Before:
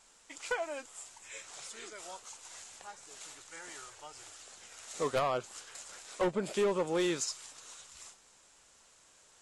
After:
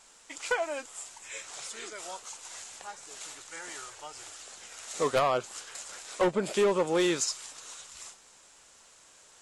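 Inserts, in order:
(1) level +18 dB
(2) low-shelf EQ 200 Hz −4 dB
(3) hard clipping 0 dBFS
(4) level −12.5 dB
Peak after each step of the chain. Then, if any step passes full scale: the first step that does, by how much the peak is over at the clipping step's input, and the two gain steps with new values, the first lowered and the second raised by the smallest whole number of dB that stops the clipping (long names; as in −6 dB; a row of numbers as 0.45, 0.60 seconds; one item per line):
−6.5, −5.0, −5.0, −17.5 dBFS
no step passes full scale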